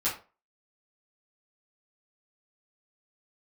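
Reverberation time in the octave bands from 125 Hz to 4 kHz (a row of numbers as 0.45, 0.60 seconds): 0.30, 0.30, 0.35, 0.30, 0.25, 0.25 seconds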